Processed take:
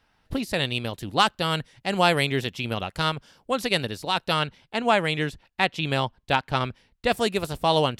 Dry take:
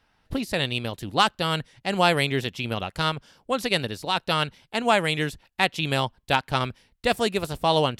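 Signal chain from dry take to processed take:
0:04.39–0:07.12: high-shelf EQ 7,600 Hz −11.5 dB

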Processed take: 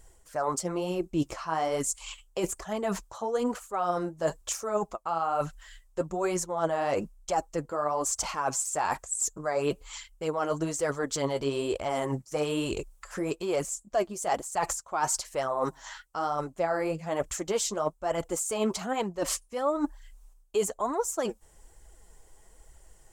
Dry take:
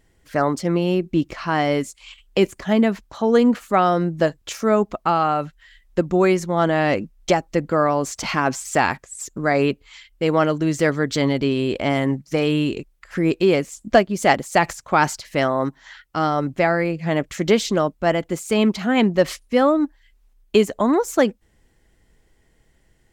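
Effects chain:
octave-band graphic EQ 125/250/1,000/2,000/4,000/8,000 Hz −8/−11/+4/−9/−6/+9 dB
reversed playback
downward compressor 6 to 1, threshold −32 dBFS, peak gain reduction 20.5 dB
reversed playback
flanger 1.1 Hz, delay 0.4 ms, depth 9.2 ms, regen +34%
level +9 dB

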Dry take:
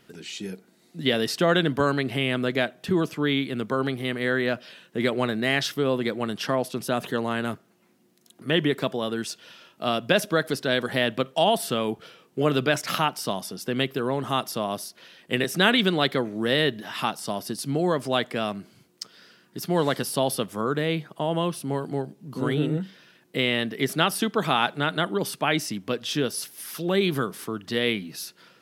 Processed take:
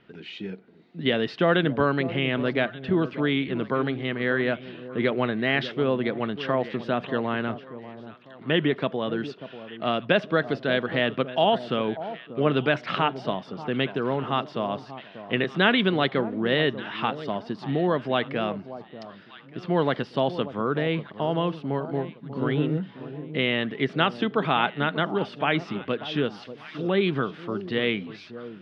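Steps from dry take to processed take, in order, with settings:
low-pass filter 3,300 Hz 24 dB per octave
on a send: delay that swaps between a low-pass and a high-pass 589 ms, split 990 Hz, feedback 53%, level −12.5 dB

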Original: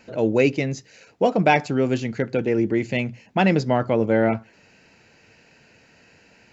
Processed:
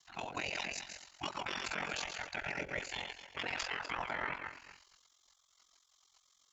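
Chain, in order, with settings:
feedback delay that plays each chunk backwards 121 ms, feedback 44%, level −7.5 dB
gate on every frequency bin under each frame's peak −20 dB weak
in parallel at −2 dB: speech leveller within 3 dB 0.5 s
on the sum: brickwall limiter −21.5 dBFS, peak gain reduction 11 dB
ring modulation 22 Hz
harmonic generator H 4 −39 dB, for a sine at −21.5 dBFS
level −3.5 dB

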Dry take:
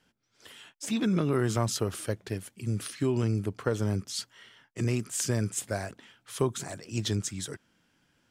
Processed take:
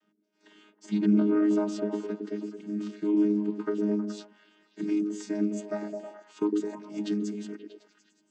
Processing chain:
channel vocoder with a chord as carrier bare fifth, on G#3
echo through a band-pass that steps 106 ms, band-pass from 310 Hz, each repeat 0.7 octaves, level −0.5 dB

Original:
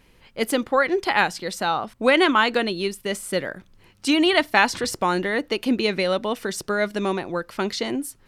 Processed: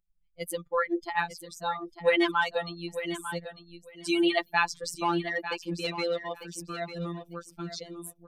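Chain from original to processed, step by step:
spectral dynamics exaggerated over time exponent 2
phases set to zero 171 Hz
0:05.00–0:06.35: mid-hump overdrive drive 15 dB, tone 2,200 Hz, clips at −14.5 dBFS
on a send: repeating echo 898 ms, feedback 15%, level −11 dB
on the sum: level −2 dB

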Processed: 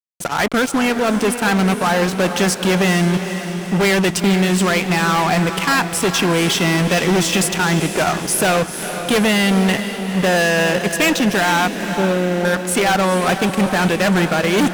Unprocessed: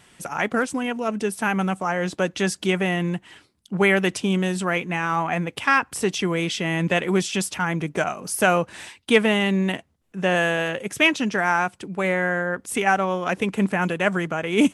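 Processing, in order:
0:11.81–0:12.45: Gaussian smoothing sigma 13 samples
fuzz pedal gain 27 dB, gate −36 dBFS
on a send: feedback delay with all-pass diffusion 459 ms, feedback 56%, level −9 dB

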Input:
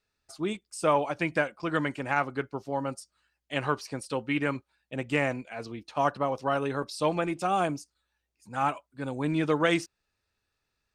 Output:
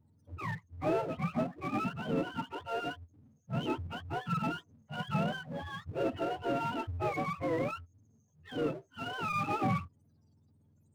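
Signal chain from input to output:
frequency axis turned over on the octave scale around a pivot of 620 Hz
gate on every frequency bin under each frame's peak −25 dB strong
power curve on the samples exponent 0.7
level −8 dB

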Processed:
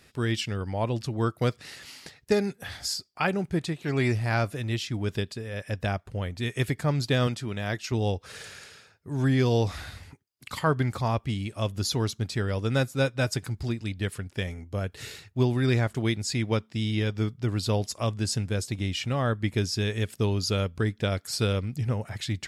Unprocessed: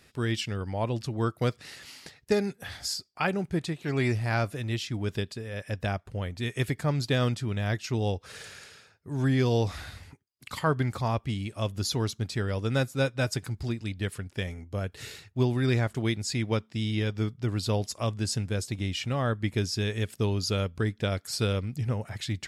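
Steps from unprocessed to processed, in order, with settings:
0:07.27–0:07.92: high-pass filter 180 Hz 6 dB per octave
level +1.5 dB

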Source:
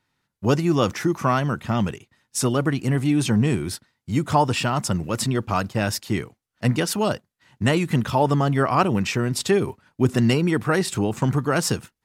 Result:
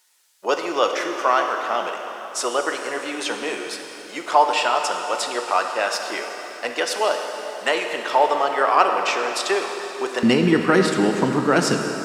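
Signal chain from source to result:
high-pass filter 470 Hz 24 dB per octave, from 0:10.23 190 Hz
background noise violet −53 dBFS
high-frequency loss of the air 60 metres
dense smooth reverb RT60 3.9 s, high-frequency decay 0.9×, DRR 3.5 dB
level +4 dB

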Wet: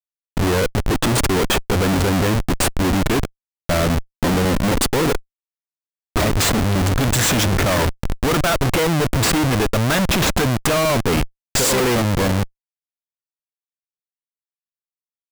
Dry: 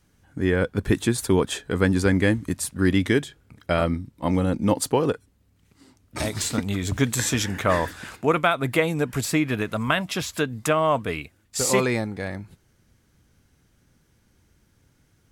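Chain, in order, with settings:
speech leveller 2 s
comparator with hysteresis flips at −29 dBFS
level +8 dB

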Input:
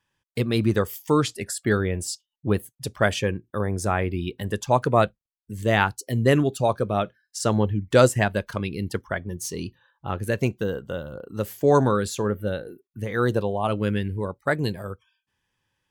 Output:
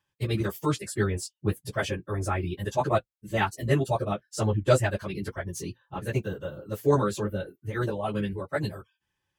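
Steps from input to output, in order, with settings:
time stretch by phase vocoder 0.59×
notch comb filter 240 Hz

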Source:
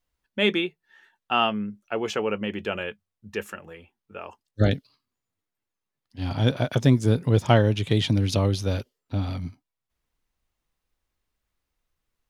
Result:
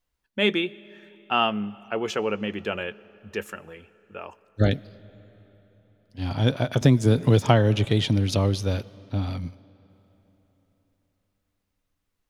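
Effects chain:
on a send at −21.5 dB: convolution reverb RT60 4.0 s, pre-delay 40 ms
0:06.81–0:07.85: on the sum: multiband upward and downward compressor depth 100%

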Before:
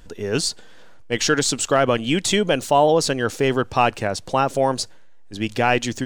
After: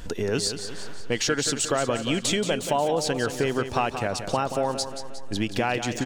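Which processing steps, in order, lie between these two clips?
downward compressor 3 to 1, threshold −35 dBFS, peak gain reduction 17 dB
on a send: repeating echo 179 ms, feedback 53%, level −9.5 dB
on the sum: level +8 dB

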